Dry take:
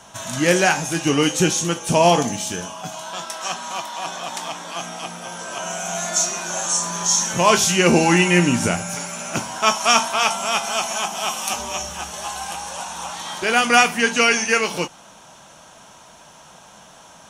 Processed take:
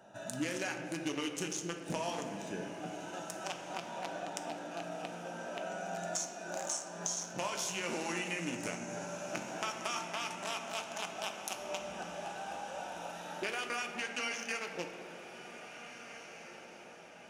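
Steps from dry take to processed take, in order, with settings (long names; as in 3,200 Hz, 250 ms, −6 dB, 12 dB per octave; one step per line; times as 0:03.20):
adaptive Wiener filter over 41 samples
high-pass filter 820 Hz 6 dB per octave
brickwall limiter −13.5 dBFS, peak gain reduction 11.5 dB
downward compressor 6 to 1, threshold −38 dBFS, peak gain reduction 17.5 dB
feedback delay with all-pass diffusion 1,839 ms, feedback 49%, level −12 dB
on a send at −4 dB: convolution reverb RT60 2.4 s, pre-delay 3 ms
on the sum: level +2 dB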